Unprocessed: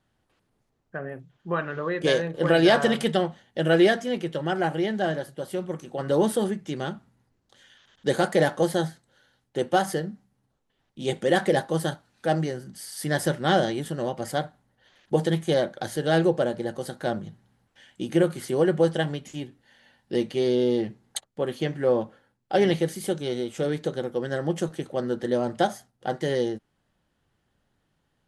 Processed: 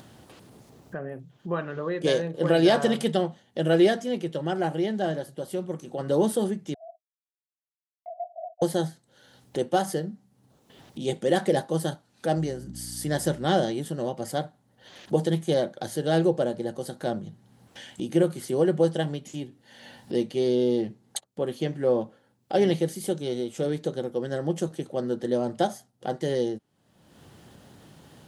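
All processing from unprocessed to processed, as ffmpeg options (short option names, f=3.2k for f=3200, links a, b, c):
-filter_complex "[0:a]asettb=1/sr,asplit=3[a][b][c];[a]atrim=end=6.744[d];[b]atrim=start=6.74:end=8.62,asetpts=PTS-STARTPTS,afade=t=in:d=0.004:c=qsin,afade=t=out:st=1.876:d=0.004:c=qsin,acrusher=bits=3:dc=4:mix=0:aa=0.000001,asuperpass=centerf=680:order=8:qfactor=7.3[e];[c]atrim=start=8.616[f];[d][e]acrossfade=d=0.004:c1=hsin:c2=qsin[g];[g][f]acrossfade=d=0.004:c1=qsin:c2=hsin,asettb=1/sr,asplit=3[h][i][j];[h]atrim=end=12.364[k];[i]atrim=start=12.36:end=13.45,asetpts=PTS-STARTPTS,afade=t=in:d=0.004:c=qsin,afade=t=out:st=1.086:d=0.004:c=qsin,equalizer=f=7.2k:w=4.2:g=3,aeval=exprs='val(0)+0.0112*(sin(2*PI*60*n/s)+sin(2*PI*2*60*n/s)/2+sin(2*PI*3*60*n/s)/3+sin(2*PI*4*60*n/s)/4+sin(2*PI*5*60*n/s)/5)':c=same[l];[j]atrim=start=13.446[m];[k][l]acrossfade=d=0.004:c1=hsin:c2=qsin[n];[n][m]acrossfade=d=0.004:c1=qsin:c2=hsin,highpass=99,equalizer=f=1.7k:t=o:w=1.7:g=-6.5,acompressor=mode=upward:threshold=-31dB:ratio=2.5"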